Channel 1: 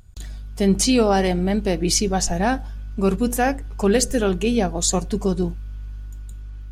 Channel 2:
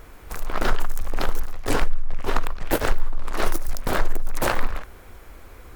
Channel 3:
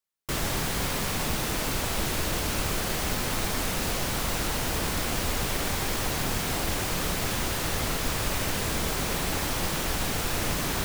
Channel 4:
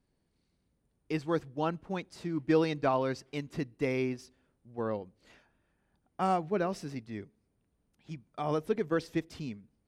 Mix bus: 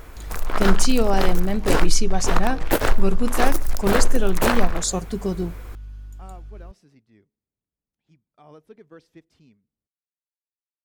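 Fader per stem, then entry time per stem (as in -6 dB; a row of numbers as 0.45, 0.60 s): -4.0 dB, +2.5 dB, off, -16.0 dB; 0.00 s, 0.00 s, off, 0.00 s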